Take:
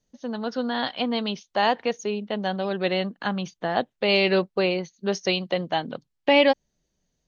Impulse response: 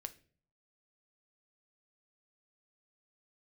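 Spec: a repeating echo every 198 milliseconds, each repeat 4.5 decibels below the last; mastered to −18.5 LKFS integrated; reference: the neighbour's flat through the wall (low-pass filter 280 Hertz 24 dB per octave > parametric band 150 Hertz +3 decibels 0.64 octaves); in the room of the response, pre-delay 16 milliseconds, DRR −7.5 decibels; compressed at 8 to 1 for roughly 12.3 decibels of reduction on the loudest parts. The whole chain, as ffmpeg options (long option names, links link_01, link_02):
-filter_complex "[0:a]acompressor=threshold=-26dB:ratio=8,aecho=1:1:198|396|594|792|990|1188|1386|1584|1782:0.596|0.357|0.214|0.129|0.0772|0.0463|0.0278|0.0167|0.01,asplit=2[link_01][link_02];[1:a]atrim=start_sample=2205,adelay=16[link_03];[link_02][link_03]afir=irnorm=-1:irlink=0,volume=11dB[link_04];[link_01][link_04]amix=inputs=2:normalize=0,lowpass=frequency=280:width=0.5412,lowpass=frequency=280:width=1.3066,equalizer=frequency=150:width_type=o:width=0.64:gain=3,volume=8.5dB"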